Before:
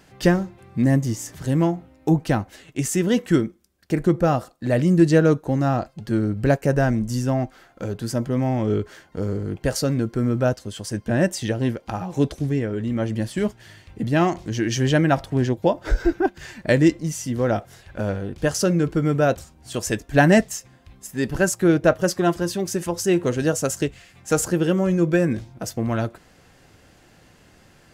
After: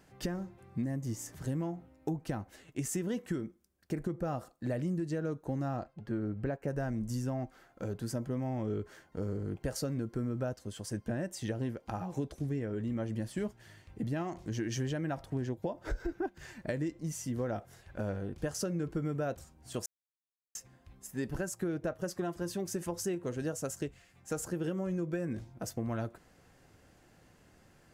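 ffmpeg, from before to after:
ffmpeg -i in.wav -filter_complex "[0:a]asettb=1/sr,asplit=3[link_01][link_02][link_03];[link_01]atrim=end=5.844[link_04];[link_02]atrim=start=5.84:end=6.68,asetpts=PTS-STARTPTS,afade=type=in:duration=0.004:curve=qsin,afade=type=out:start_time=0.836:duration=0.004:curve=qsin,bass=frequency=250:gain=-3,treble=frequency=4000:gain=-13[link_05];[link_03]atrim=start=6.676[link_06];[link_04][link_05]acrossfade=duration=0.004:curve1=hsin:curve2=qsin[link_07];[link_07][link_06]acrossfade=duration=0.004:curve1=qsin:curve2=hsin,asplit=5[link_08][link_09][link_10][link_11][link_12];[link_08]atrim=end=19.86,asetpts=PTS-STARTPTS,afade=type=out:start_time=19.856:duration=0.004:curve=hsin[link_13];[link_09]atrim=start=19.86:end=20.55,asetpts=PTS-STARTPTS,volume=0[link_14];[link_10]atrim=start=20.55:end=23.152,asetpts=PTS-STARTPTS,afade=type=in:duration=0.004:curve=hsin[link_15];[link_11]atrim=start=23.148:end=24.642,asetpts=PTS-STARTPTS,volume=-3dB[link_16];[link_12]atrim=start=24.638[link_17];[link_13][link_14][link_15]concat=n=3:v=0:a=1[link_18];[link_18][link_16]acrossfade=duration=0.004:curve1=hsin:curve2=hsin[link_19];[link_19][link_17]acrossfade=duration=0.004:curve1=hsin:curve2=hsin,equalizer=frequency=3500:width_type=o:width=1.6:gain=-4.5,alimiter=limit=-11dB:level=0:latency=1:release=259,acompressor=threshold=-22dB:ratio=6,volume=-8.5dB" out.wav

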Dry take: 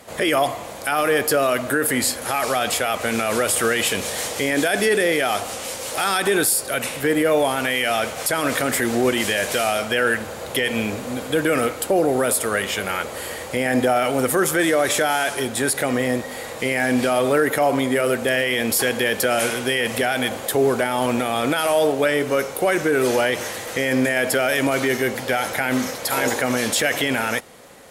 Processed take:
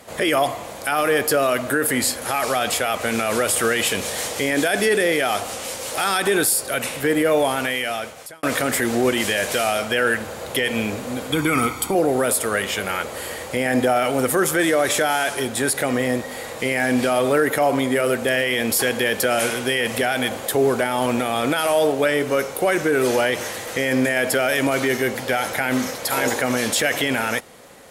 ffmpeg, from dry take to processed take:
ffmpeg -i in.wav -filter_complex "[0:a]asettb=1/sr,asplit=3[link_01][link_02][link_03];[link_01]atrim=end=11.324[link_04];[link_02]atrim=start=11.32:end=11.95,asetpts=PTS-STARTPTS,afade=type=in:duration=0.004:curve=qsin,afade=type=out:start_time=0.626:duration=0.004:curve=qsin,aecho=1:1:0.9:0.78,atrim=end_sample=27783[link_05];[link_03]atrim=start=11.946[link_06];[link_04][link_05]acrossfade=duration=0.004:curve1=hsin:curve2=qsin[link_07];[link_07][link_06]acrossfade=duration=0.004:curve1=qsin:curve2=hsin,asplit=2[link_08][link_09];[link_08]atrim=end=8.43,asetpts=PTS-STARTPTS,afade=type=out:start_time=7.56:duration=0.87[link_10];[link_09]atrim=start=8.43,asetpts=PTS-STARTPTS,afade=type=in:duration=0.004:curve=hsin[link_11];[link_10][link_11]concat=n=2:v=0:a=1" out.wav

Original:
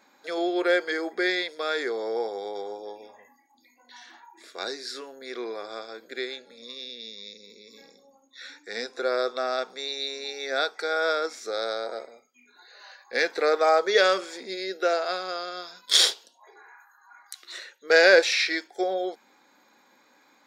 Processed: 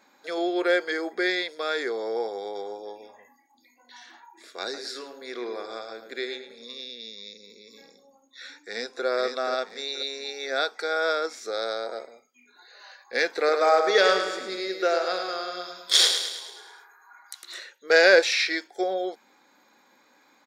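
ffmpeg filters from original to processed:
ffmpeg -i in.wav -filter_complex "[0:a]asettb=1/sr,asplit=3[link_01][link_02][link_03];[link_01]atrim=end=4.634[link_04];[link_02]atrim=start=4.63:end=6.81,asetpts=PTS-STARTPTS,afade=type=in:duration=0.004:curve=qsin,afade=type=out:start_time=2.176:duration=0.004:curve=qsin,asplit=2[link_05][link_06];[link_06]adelay=107,lowpass=frequency=3500:poles=1,volume=-8.5dB,asplit=2[link_07][link_08];[link_08]adelay=107,lowpass=frequency=3500:poles=1,volume=0.35,asplit=2[link_09][link_10];[link_10]adelay=107,lowpass=frequency=3500:poles=1,volume=0.35,asplit=2[link_11][link_12];[link_12]adelay=107,lowpass=frequency=3500:poles=1,volume=0.35[link_13];[link_05][link_07][link_09][link_11][link_13]amix=inputs=5:normalize=0,atrim=end_sample=96138[link_14];[link_03]atrim=start=6.806[link_15];[link_04][link_14]acrossfade=duration=0.004:curve1=hsin:curve2=qsin[link_16];[link_16][link_15]acrossfade=duration=0.004:curve1=qsin:curve2=hsin,asplit=2[link_17][link_18];[link_18]afade=type=in:start_time=8.63:duration=0.01,afade=type=out:start_time=9.06:duration=0.01,aecho=0:1:480|960|1440|1920:0.630957|0.189287|0.0567862|0.0170358[link_19];[link_17][link_19]amix=inputs=2:normalize=0,asettb=1/sr,asplit=3[link_20][link_21][link_22];[link_20]atrim=end=13.314[link_23];[link_21]atrim=start=13.31:end=17.59,asetpts=PTS-STARTPTS,afade=type=in:duration=0.004:curve=qsin,afade=type=out:start_time=4.276:duration=0.004:curve=qsin,aecho=1:1:106|212|318|424|530|636|742:0.447|0.241|0.13|0.0703|0.038|0.0205|0.0111,atrim=end_sample=188748[link_24];[link_22]atrim=start=17.586[link_25];[link_23][link_24]acrossfade=duration=0.004:curve1=hsin:curve2=qsin[link_26];[link_26][link_25]acrossfade=duration=0.004:curve1=qsin:curve2=hsin" out.wav

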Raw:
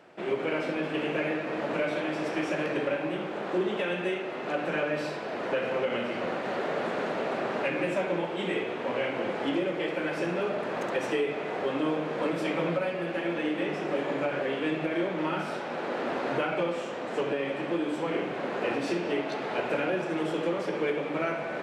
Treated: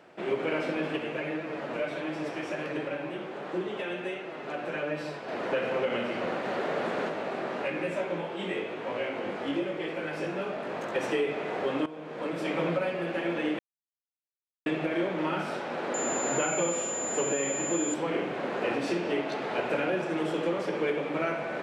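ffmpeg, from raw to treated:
ffmpeg -i in.wav -filter_complex "[0:a]asplit=3[link_01][link_02][link_03];[link_01]afade=type=out:start_time=0.96:duration=0.02[link_04];[link_02]flanger=delay=5.9:depth=2.7:regen=49:speed=1.4:shape=triangular,afade=type=in:start_time=0.96:duration=0.02,afade=type=out:start_time=5.27:duration=0.02[link_05];[link_03]afade=type=in:start_time=5.27:duration=0.02[link_06];[link_04][link_05][link_06]amix=inputs=3:normalize=0,asplit=3[link_07][link_08][link_09];[link_07]afade=type=out:start_time=7.08:duration=0.02[link_10];[link_08]flanger=delay=18:depth=2.9:speed=1,afade=type=in:start_time=7.08:duration=0.02,afade=type=out:start_time=10.94:duration=0.02[link_11];[link_09]afade=type=in:start_time=10.94:duration=0.02[link_12];[link_10][link_11][link_12]amix=inputs=3:normalize=0,asettb=1/sr,asplit=3[link_13][link_14][link_15];[link_13]atrim=end=15.944[link_16];[link_14]atrim=start=15.94:end=17.94,asetpts=PTS-STARTPTS,afade=type=in:duration=0.004:curve=qsin,afade=type=out:start_time=1.996:duration=0.004:curve=qsin,aeval=exprs='val(0)+0.0251*sin(2*PI*7100*n/s)':channel_layout=same[link_17];[link_15]atrim=start=17.936[link_18];[link_16][link_17]acrossfade=duration=0.004:curve1=hsin:curve2=qsin[link_19];[link_19][link_18]acrossfade=duration=0.004:curve1=qsin:curve2=hsin,asplit=4[link_20][link_21][link_22][link_23];[link_20]atrim=end=11.86,asetpts=PTS-STARTPTS,afade=type=out:start_time=11.856:duration=0.004:curve=hsin:silence=0.133352[link_24];[link_21]atrim=start=11.86:end=13.59,asetpts=PTS-STARTPTS,afade=type=in:duration=0.75:silence=0.133352,afade=type=out:start_time=1.726:duration=0.004:curve=hsin[link_25];[link_22]atrim=start=13.59:end=14.66,asetpts=PTS-STARTPTS,volume=0[link_26];[link_23]atrim=start=14.66,asetpts=PTS-STARTPTS,afade=type=in:duration=0.004:curve=hsin[link_27];[link_24][link_25][link_26][link_27]concat=n=4:v=0:a=1" out.wav

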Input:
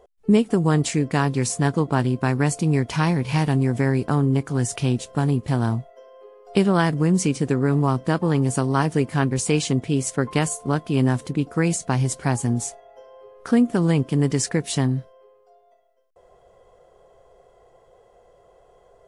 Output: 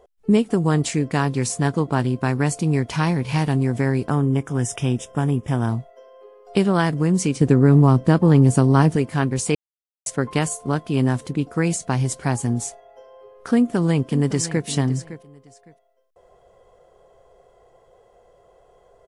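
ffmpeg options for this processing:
ffmpeg -i in.wav -filter_complex "[0:a]asettb=1/sr,asplit=3[link_01][link_02][link_03];[link_01]atrim=end=4.104[link_04];[link_02]atrim=start=4.1:end=5.69,asetpts=PTS-STARTPTS,afade=type=in:duration=0.004:curve=qsin,afade=type=out:start_time=1.586:duration=0.004:curve=qsin,asuperstop=centerf=4300:order=8:qfactor=3.5[link_05];[link_03]atrim=start=5.686[link_06];[link_04][link_05]acrossfade=duration=0.004:curve1=hsin:curve2=qsin[link_07];[link_07][link_06]acrossfade=duration=0.004:curve1=qsin:curve2=hsin,asettb=1/sr,asplit=3[link_08][link_09][link_10];[link_08]atrim=end=7.414[link_11];[link_09]atrim=start=7.41:end=8.96,asetpts=PTS-STARTPTS,afade=type=in:duration=0.004:curve=qsin,afade=type=out:start_time=1.546:duration=0.004:curve=qsin,lowshelf=frequency=440:gain=8.5[link_12];[link_10]atrim=start=8.956[link_13];[link_11][link_12]acrossfade=duration=0.004:curve1=hsin:curve2=qsin[link_14];[link_14][link_13]acrossfade=duration=0.004:curve1=qsin:curve2=hsin,asplit=2[link_15][link_16];[link_16]afade=type=in:start_time=13.55:duration=0.01,afade=type=out:start_time=14.66:duration=0.01,aecho=0:1:560|1120:0.199526|0.0399052[link_17];[link_15][link_17]amix=inputs=2:normalize=0,asplit=3[link_18][link_19][link_20];[link_18]atrim=end=9.55,asetpts=PTS-STARTPTS,afade=type=out:start_time=9.546:duration=0.004:curve=hsin[link_21];[link_19]atrim=start=9.55:end=10.06,asetpts=PTS-STARTPTS,volume=0[link_22];[link_20]atrim=start=10.06,asetpts=PTS-STARTPTS,afade=type=in:duration=0.004:curve=hsin[link_23];[link_21][link_22][link_23]concat=n=3:v=0:a=1" out.wav

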